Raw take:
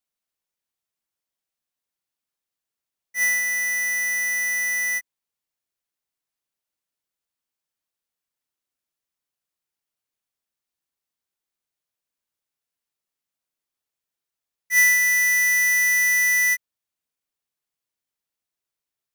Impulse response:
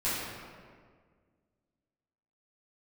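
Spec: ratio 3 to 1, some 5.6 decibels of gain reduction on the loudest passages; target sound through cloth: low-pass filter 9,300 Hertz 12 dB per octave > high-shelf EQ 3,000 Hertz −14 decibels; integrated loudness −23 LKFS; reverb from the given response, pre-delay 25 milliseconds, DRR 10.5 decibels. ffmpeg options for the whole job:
-filter_complex "[0:a]acompressor=threshold=-23dB:ratio=3,asplit=2[link_01][link_02];[1:a]atrim=start_sample=2205,adelay=25[link_03];[link_02][link_03]afir=irnorm=-1:irlink=0,volume=-19.5dB[link_04];[link_01][link_04]amix=inputs=2:normalize=0,lowpass=9300,highshelf=frequency=3000:gain=-14,volume=1.5dB"

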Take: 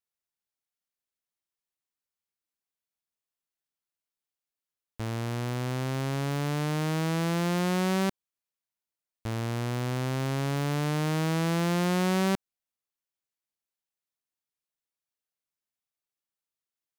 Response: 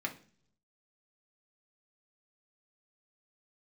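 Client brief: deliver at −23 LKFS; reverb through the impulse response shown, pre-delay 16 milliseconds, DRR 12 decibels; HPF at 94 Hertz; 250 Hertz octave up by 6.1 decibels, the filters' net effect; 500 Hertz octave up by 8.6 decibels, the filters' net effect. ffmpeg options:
-filter_complex "[0:a]highpass=94,equalizer=frequency=250:width_type=o:gain=7.5,equalizer=frequency=500:width_type=o:gain=8.5,asplit=2[link_01][link_02];[1:a]atrim=start_sample=2205,adelay=16[link_03];[link_02][link_03]afir=irnorm=-1:irlink=0,volume=-15dB[link_04];[link_01][link_04]amix=inputs=2:normalize=0,volume=0.5dB"

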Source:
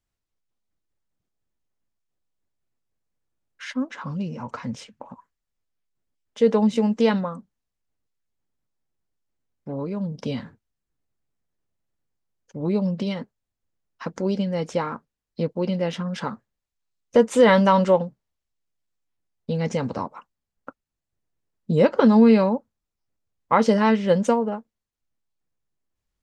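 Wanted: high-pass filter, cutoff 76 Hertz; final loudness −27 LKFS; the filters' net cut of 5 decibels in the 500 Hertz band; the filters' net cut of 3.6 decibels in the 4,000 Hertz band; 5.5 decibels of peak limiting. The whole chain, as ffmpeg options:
ffmpeg -i in.wav -af "highpass=76,equalizer=frequency=500:width_type=o:gain=-5.5,equalizer=frequency=4000:width_type=o:gain=-5,volume=-2dB,alimiter=limit=-13.5dB:level=0:latency=1" out.wav

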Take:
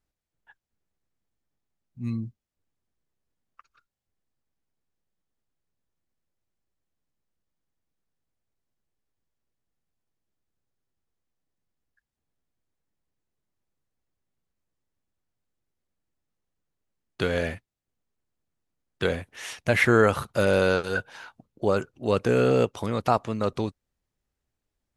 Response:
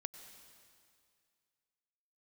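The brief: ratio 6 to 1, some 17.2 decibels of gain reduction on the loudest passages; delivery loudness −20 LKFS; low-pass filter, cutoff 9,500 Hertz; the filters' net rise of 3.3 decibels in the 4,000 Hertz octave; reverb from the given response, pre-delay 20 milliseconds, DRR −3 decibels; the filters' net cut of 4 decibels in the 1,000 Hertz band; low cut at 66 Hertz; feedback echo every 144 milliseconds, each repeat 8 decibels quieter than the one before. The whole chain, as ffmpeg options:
-filter_complex "[0:a]highpass=66,lowpass=9500,equalizer=frequency=1000:width_type=o:gain=-6.5,equalizer=frequency=4000:width_type=o:gain=4.5,acompressor=threshold=-34dB:ratio=6,aecho=1:1:144|288|432|576|720:0.398|0.159|0.0637|0.0255|0.0102,asplit=2[link_01][link_02];[1:a]atrim=start_sample=2205,adelay=20[link_03];[link_02][link_03]afir=irnorm=-1:irlink=0,volume=6dB[link_04];[link_01][link_04]amix=inputs=2:normalize=0,volume=14dB"

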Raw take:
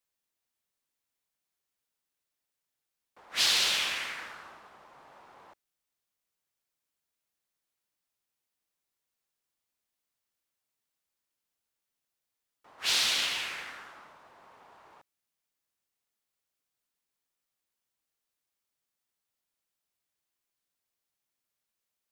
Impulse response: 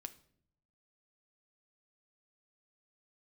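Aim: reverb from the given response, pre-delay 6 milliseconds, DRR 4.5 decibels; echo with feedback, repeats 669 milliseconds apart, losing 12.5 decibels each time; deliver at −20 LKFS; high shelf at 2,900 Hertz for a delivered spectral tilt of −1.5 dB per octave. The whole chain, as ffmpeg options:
-filter_complex "[0:a]highshelf=frequency=2900:gain=-8.5,aecho=1:1:669|1338|2007:0.237|0.0569|0.0137,asplit=2[link_01][link_02];[1:a]atrim=start_sample=2205,adelay=6[link_03];[link_02][link_03]afir=irnorm=-1:irlink=0,volume=0dB[link_04];[link_01][link_04]amix=inputs=2:normalize=0,volume=12dB"

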